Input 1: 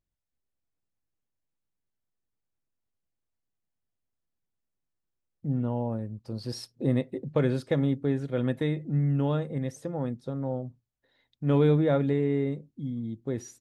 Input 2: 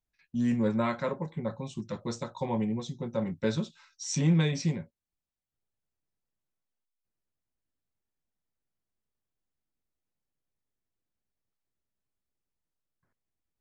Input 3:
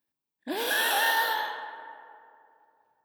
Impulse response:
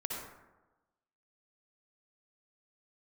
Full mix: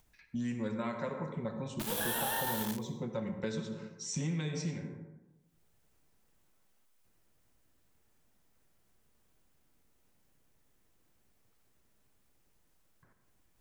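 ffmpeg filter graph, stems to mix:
-filter_complex "[1:a]equalizer=frequency=4300:width=1.5:gain=-2.5,acompressor=mode=upward:threshold=-52dB:ratio=2.5,volume=-4.5dB,asplit=2[link_01][link_02];[link_02]volume=-4.5dB[link_03];[2:a]aexciter=amount=1.9:drive=5:freq=2700,aeval=exprs='val(0)*gte(abs(val(0)),0.0631)':channel_layout=same,adelay=1300,volume=-2.5dB,asplit=2[link_04][link_05];[link_05]volume=-23dB[link_06];[3:a]atrim=start_sample=2205[link_07];[link_03][link_07]afir=irnorm=-1:irlink=0[link_08];[link_06]aecho=0:1:67|134|201|268|335|402:1|0.41|0.168|0.0689|0.0283|0.0116[link_09];[link_01][link_04][link_08][link_09]amix=inputs=4:normalize=0,acrossover=split=1500|6100[link_10][link_11][link_12];[link_10]acompressor=threshold=-34dB:ratio=4[link_13];[link_11]acompressor=threshold=-47dB:ratio=4[link_14];[link_12]acompressor=threshold=-37dB:ratio=4[link_15];[link_13][link_14][link_15]amix=inputs=3:normalize=0"

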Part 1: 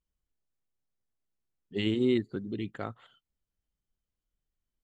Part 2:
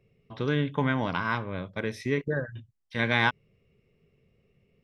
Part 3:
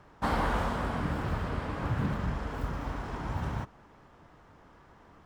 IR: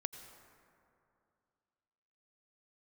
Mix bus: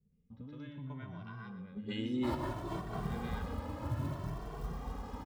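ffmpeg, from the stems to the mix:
-filter_complex "[0:a]volume=-1dB,asplit=3[link_01][link_02][link_03];[link_02]volume=-5.5dB[link_04];[1:a]volume=-1.5dB,asplit=2[link_05][link_06];[link_06]volume=-19dB[link_07];[2:a]equalizer=frequency=1500:width=5.4:gain=-7,acrusher=bits=7:mode=log:mix=0:aa=0.000001,adelay=2000,volume=-3.5dB[link_08];[link_03]apad=whole_len=319770[link_09];[link_08][link_09]sidechaincompress=threshold=-40dB:ratio=8:attack=42:release=107[link_10];[link_01][link_05]amix=inputs=2:normalize=0,firequalizer=gain_entry='entry(210,0);entry(380,-17);entry(2100,-27)':delay=0.05:min_phase=1,acompressor=threshold=-40dB:ratio=6,volume=0dB[link_11];[link_04][link_07]amix=inputs=2:normalize=0,aecho=0:1:120|240|360|480:1|0.3|0.09|0.027[link_12];[link_10][link_11][link_12]amix=inputs=3:normalize=0,adynamicequalizer=threshold=0.00126:dfrequency=2200:dqfactor=1.6:tfrequency=2200:tqfactor=1.6:attack=5:release=100:ratio=0.375:range=3:mode=cutabove:tftype=bell,asplit=2[link_13][link_14];[link_14]adelay=2.1,afreqshift=0.62[link_15];[link_13][link_15]amix=inputs=2:normalize=1"

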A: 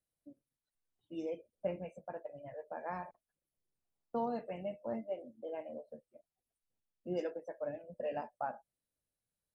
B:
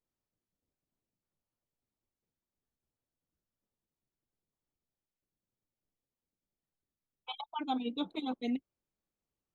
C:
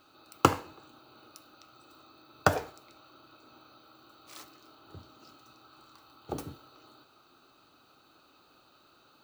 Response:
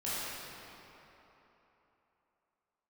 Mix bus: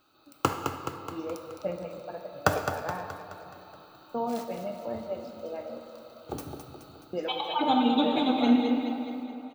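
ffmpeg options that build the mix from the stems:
-filter_complex "[0:a]volume=-3dB,asplit=3[link_01][link_02][link_03];[link_01]atrim=end=5.79,asetpts=PTS-STARTPTS,afade=type=out:start_time=5.786:duration=0.004:curve=hsin[link_04];[link_02]atrim=start=5.79:end=7.13,asetpts=PTS-STARTPTS,volume=0[link_05];[link_03]atrim=start=7.13,asetpts=PTS-STARTPTS,afade=type=in:duration=0.004:curve=hsin[link_06];[link_04][link_05][link_06]concat=n=3:v=0:a=1,asplit=2[link_07][link_08];[link_08]volume=-9.5dB[link_09];[1:a]volume=0.5dB,asplit=3[link_10][link_11][link_12];[link_11]volume=-4dB[link_13];[link_12]volume=-3.5dB[link_14];[2:a]highshelf=frequency=12000:gain=4.5,volume=-6.5dB,asplit=3[link_15][link_16][link_17];[link_16]volume=-12.5dB[link_18];[link_17]volume=-7dB[link_19];[3:a]atrim=start_sample=2205[link_20];[link_09][link_13][link_18]amix=inputs=3:normalize=0[link_21];[link_21][link_20]afir=irnorm=-1:irlink=0[link_22];[link_14][link_19]amix=inputs=2:normalize=0,aecho=0:1:212|424|636|848|1060|1272|1484|1696:1|0.54|0.292|0.157|0.085|0.0459|0.0248|0.0134[link_23];[link_07][link_10][link_15][link_22][link_23]amix=inputs=5:normalize=0,dynaudnorm=framelen=170:gausssize=7:maxgain=5.5dB"

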